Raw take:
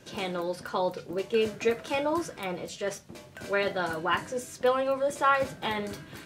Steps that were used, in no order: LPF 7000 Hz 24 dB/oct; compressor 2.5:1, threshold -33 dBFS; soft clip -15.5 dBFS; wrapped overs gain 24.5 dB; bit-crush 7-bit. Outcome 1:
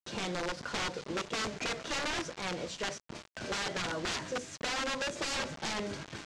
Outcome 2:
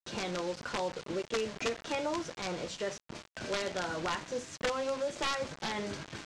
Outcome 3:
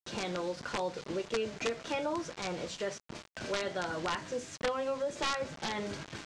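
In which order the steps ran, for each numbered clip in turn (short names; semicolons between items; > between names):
bit-crush > wrapped overs > LPF > soft clip > compressor; compressor > wrapped overs > bit-crush > LPF > soft clip; bit-crush > compressor > soft clip > wrapped overs > LPF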